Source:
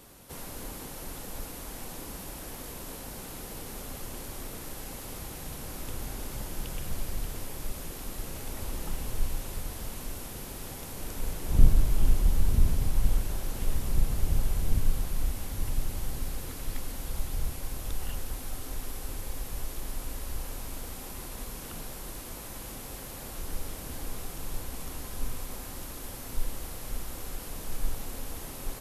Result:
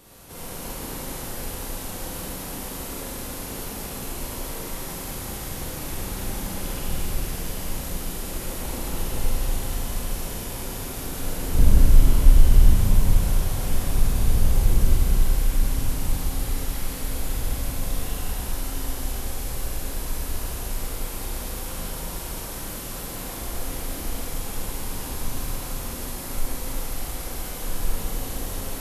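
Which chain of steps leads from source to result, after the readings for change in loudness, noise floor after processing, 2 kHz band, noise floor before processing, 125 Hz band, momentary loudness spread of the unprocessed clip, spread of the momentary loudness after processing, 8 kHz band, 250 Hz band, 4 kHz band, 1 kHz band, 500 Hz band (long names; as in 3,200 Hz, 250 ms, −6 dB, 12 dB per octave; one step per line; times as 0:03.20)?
+8.0 dB, −34 dBFS, +7.5 dB, −42 dBFS, +7.5 dB, 10 LU, 10 LU, +8.0 dB, +8.0 dB, +8.0 dB, +8.0 dB, +8.0 dB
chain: four-comb reverb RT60 3.3 s, combs from 33 ms, DRR −7 dB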